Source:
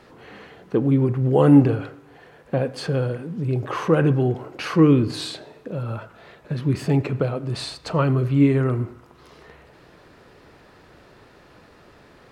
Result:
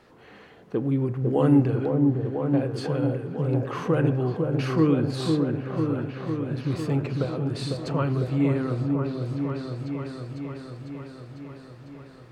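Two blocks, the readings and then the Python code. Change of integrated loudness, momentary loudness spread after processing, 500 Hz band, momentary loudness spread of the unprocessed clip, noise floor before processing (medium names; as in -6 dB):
-4.5 dB, 16 LU, -3.5 dB, 15 LU, -51 dBFS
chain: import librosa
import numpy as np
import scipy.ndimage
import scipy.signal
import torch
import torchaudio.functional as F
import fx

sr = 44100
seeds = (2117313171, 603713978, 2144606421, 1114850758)

y = fx.echo_opening(x, sr, ms=500, hz=750, octaves=1, feedback_pct=70, wet_db=-3)
y = y * 10.0 ** (-6.0 / 20.0)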